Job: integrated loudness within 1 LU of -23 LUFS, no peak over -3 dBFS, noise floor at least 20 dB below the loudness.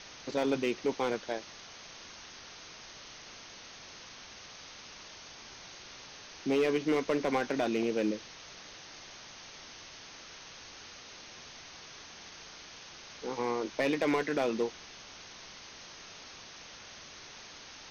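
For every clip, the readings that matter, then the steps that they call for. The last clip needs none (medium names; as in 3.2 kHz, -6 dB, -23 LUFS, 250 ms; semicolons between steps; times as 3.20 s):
clipped samples 0.4%; clipping level -22.0 dBFS; noise floor -50 dBFS; noise floor target -52 dBFS; loudness -32.0 LUFS; peak level -22.0 dBFS; loudness target -23.0 LUFS
-> clip repair -22 dBFS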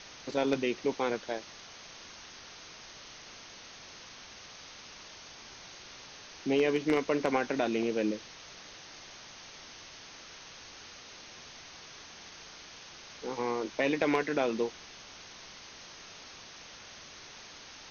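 clipped samples 0.0%; noise floor -50 dBFS; noise floor target -51 dBFS
-> noise reduction 6 dB, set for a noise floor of -50 dBFS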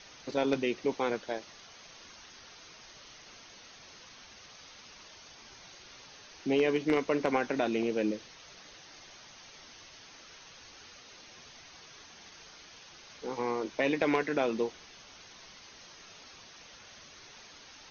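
noise floor -53 dBFS; loudness -31.0 LUFS; peak level -13.0 dBFS; loudness target -23.0 LUFS
-> trim +8 dB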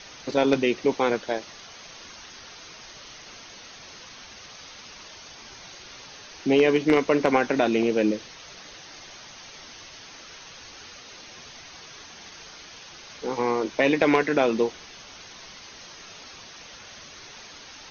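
loudness -23.0 LUFS; peak level -5.0 dBFS; noise floor -45 dBFS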